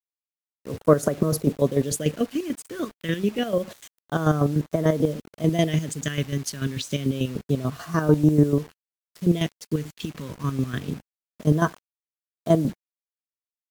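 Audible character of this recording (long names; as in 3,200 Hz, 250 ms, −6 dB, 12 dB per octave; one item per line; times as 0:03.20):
phaser sweep stages 2, 0.27 Hz, lowest notch 680–2,700 Hz
chopped level 6.8 Hz, depth 65%, duty 35%
a quantiser's noise floor 8 bits, dither none
Ogg Vorbis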